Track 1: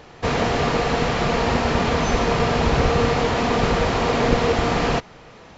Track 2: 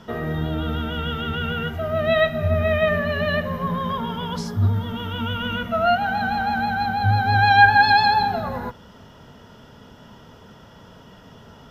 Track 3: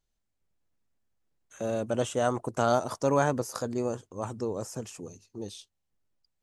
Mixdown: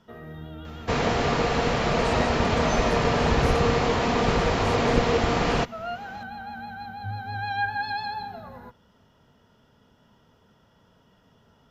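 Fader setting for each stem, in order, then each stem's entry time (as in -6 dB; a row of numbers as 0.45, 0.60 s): -3.0, -14.5, -8.5 dB; 0.65, 0.00, 0.00 s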